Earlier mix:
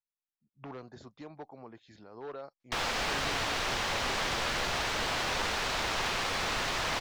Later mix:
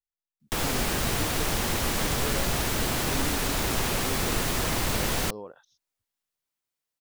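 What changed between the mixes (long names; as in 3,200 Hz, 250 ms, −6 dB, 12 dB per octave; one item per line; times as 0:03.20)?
background: entry −2.20 s
master: remove three-way crossover with the lows and the highs turned down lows −12 dB, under 540 Hz, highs −22 dB, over 6,000 Hz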